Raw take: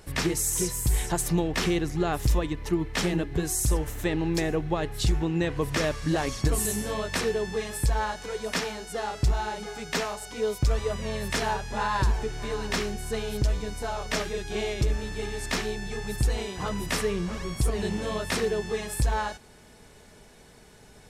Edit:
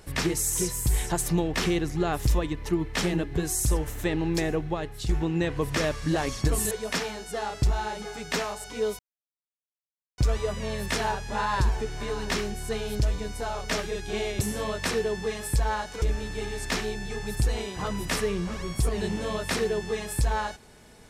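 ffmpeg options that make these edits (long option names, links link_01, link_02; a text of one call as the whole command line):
ffmpeg -i in.wav -filter_complex "[0:a]asplit=6[link_01][link_02][link_03][link_04][link_05][link_06];[link_01]atrim=end=5.09,asetpts=PTS-STARTPTS,afade=type=out:start_time=4.52:duration=0.57:silence=0.375837[link_07];[link_02]atrim=start=5.09:end=6.712,asetpts=PTS-STARTPTS,afade=type=in:duration=0.004:curve=hsin:silence=0.375837[link_08];[link_03]atrim=start=8.318:end=10.6,asetpts=PTS-STARTPTS,afade=type=out:start_time=2.278:duration=0.004:curve=hsin,apad=pad_dur=1.19[link_09];[link_04]atrim=start=10.6:end=14.832,asetpts=PTS-STARTPTS,afade=type=in:duration=0.004:curve=hsin[link_10];[link_05]atrim=start=6.708:end=8.322[link_11];[link_06]atrim=start=14.828[link_12];[link_07][link_08]concat=n=2:v=0:a=1[link_13];[link_09][link_10]concat=n=2:v=0:a=1[link_14];[link_13][link_14]acrossfade=duration=0.004:curve1=hsin:curve2=hsin[link_15];[link_15][link_11]acrossfade=duration=0.004:curve1=hsin:curve2=hsin[link_16];[link_16][link_12]acrossfade=duration=0.004:curve1=hsin:curve2=hsin" out.wav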